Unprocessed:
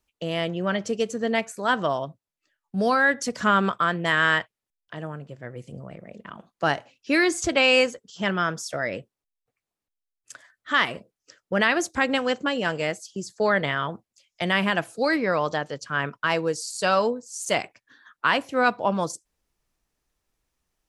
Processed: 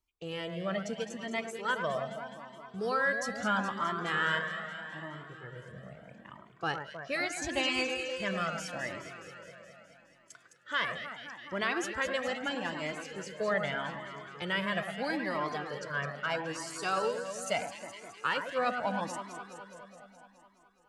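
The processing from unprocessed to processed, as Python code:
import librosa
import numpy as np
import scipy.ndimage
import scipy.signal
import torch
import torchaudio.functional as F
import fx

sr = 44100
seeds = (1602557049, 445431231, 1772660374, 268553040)

y = fx.echo_alternate(x, sr, ms=105, hz=1900.0, feedback_pct=82, wet_db=-7.0)
y = fx.comb_cascade(y, sr, direction='rising', hz=0.78)
y = F.gain(torch.from_numpy(y), -5.5).numpy()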